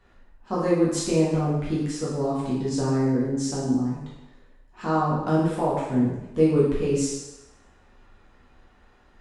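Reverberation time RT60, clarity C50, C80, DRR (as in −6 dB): 0.95 s, 1.0 dB, 3.5 dB, −7.5 dB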